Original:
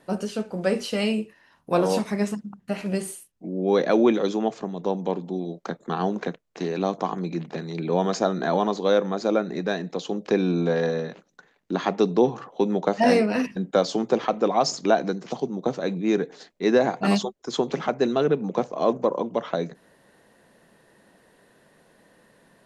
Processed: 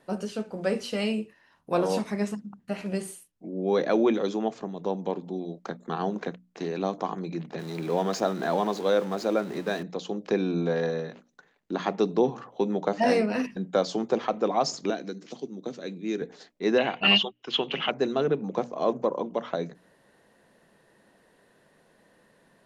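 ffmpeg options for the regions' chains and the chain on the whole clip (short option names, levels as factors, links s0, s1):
-filter_complex "[0:a]asettb=1/sr,asplit=3[s0][s1][s2];[s0]atrim=end=7.594[s3];[s1]atrim=start=7.59:end=9.83,asetpts=PTS-STARTPTS,afade=t=in:d=0.004:c=qsin,afade=t=out:st=2.236:d=0.004:c=qsin,aeval=exprs='val(0)+0.5*0.0188*sgn(val(0))':c=same,highpass=46,lowshelf=f=88:g=-9[s4];[s2]atrim=start=9.826[s5];[s3][s4]acrossfade=d=0.004:c1=hsin:c2=qsin[s6];[s6][s5]acrossfade=d=0.004:c1=qsin:c2=hsin,asettb=1/sr,asplit=3[s7][s8][s9];[s7]atrim=end=14.904[s10];[s8]atrim=start=14.9:end=16.22,asetpts=PTS-STARTPTS,afade=t=in:d=0.004:c=qsin,afade=t=out:st=1.316:d=0.004:c=qsin,highpass=220,equalizer=f=850:w=0.83:g=-12.5[s11];[s9]atrim=start=16.216[s12];[s10][s11]acrossfade=d=0.004:c1=hsin:c2=qsin[s13];[s13][s12]acrossfade=d=0.004:c1=qsin:c2=hsin,asettb=1/sr,asplit=3[s14][s15][s16];[s14]atrim=end=16.784[s17];[s15]atrim=start=16.78:end=17.91,asetpts=PTS-STARTPTS,afade=t=in:d=0.004:c=qsin,afade=t=out:st=1.126:d=0.004:c=qsin,lowpass=f=2900:t=q:w=14,tiltshelf=f=1100:g=-3.5[s18];[s16]atrim=start=17.906[s19];[s17][s18]acrossfade=d=0.004:c1=hsin:c2=qsin[s20];[s20][s19]acrossfade=d=0.004:c1=qsin:c2=hsin,highshelf=f=8900:g=-3.5,bandreject=f=60:t=h:w=6,bandreject=f=120:t=h:w=6,bandreject=f=180:t=h:w=6,bandreject=f=240:t=h:w=6,bandreject=f=300:t=h:w=6,volume=0.668"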